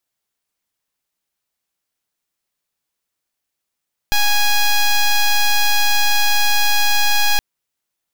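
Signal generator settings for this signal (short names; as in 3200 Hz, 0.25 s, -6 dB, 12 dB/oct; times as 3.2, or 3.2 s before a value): pulse 827 Hz, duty 9% -13.5 dBFS 3.27 s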